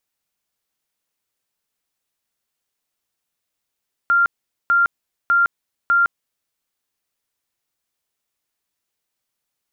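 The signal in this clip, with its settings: tone bursts 1.39 kHz, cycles 221, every 0.60 s, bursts 4, -12 dBFS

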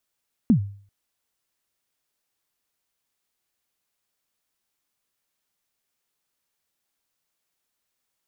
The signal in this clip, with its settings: kick drum length 0.39 s, from 260 Hz, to 100 Hz, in 97 ms, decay 0.48 s, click off, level -10 dB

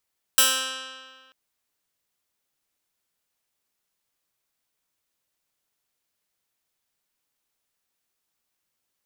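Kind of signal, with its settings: plucked string C4, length 0.94 s, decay 1.72 s, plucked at 0.12, bright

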